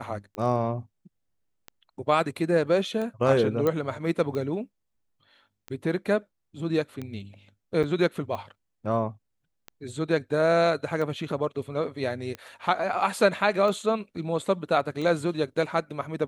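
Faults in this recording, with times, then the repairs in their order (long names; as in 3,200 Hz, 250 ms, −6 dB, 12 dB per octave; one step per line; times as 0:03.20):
scratch tick 45 rpm −22 dBFS
0:03.67: click −13 dBFS
0:07.83–0:07.84: drop-out 7.1 ms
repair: click removal
repair the gap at 0:07.83, 7.1 ms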